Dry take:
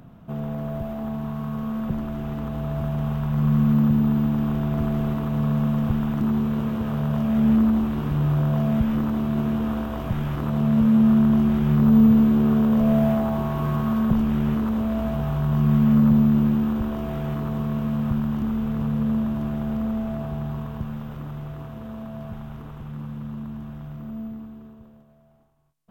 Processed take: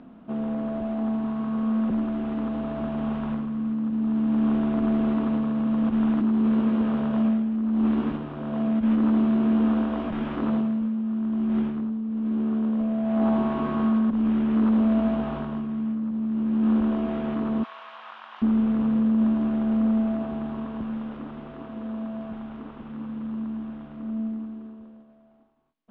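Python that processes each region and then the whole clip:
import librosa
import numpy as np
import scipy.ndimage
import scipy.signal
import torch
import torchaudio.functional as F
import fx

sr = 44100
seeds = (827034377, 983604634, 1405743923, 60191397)

y = fx.chain(x, sr, fx.highpass(hz=870.0, slope=24),
    fx.high_shelf(hz=4800.0, db=10.0), at=(17.63, 18.42))
y = fx.over_compress(y, sr, threshold_db=-23.0, ratio=-1.0)
y = scipy.signal.sosfilt(scipy.signal.butter(4, 3700.0, 'lowpass', fs=sr, output='sos'), y)
y = fx.low_shelf_res(y, sr, hz=180.0, db=-9.5, q=3.0)
y = y * 10.0 ** (-2.5 / 20.0)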